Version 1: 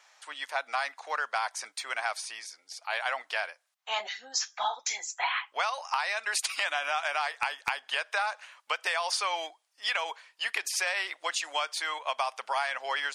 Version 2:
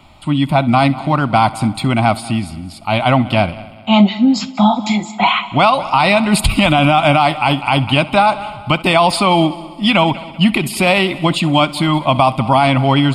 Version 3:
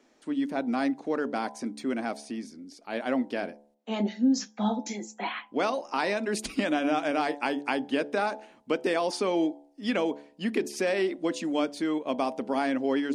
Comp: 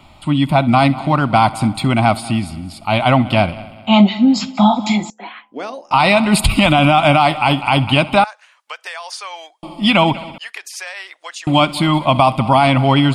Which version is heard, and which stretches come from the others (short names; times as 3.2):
2
5.1–5.91 from 3
8.24–9.63 from 1
10.38–11.47 from 1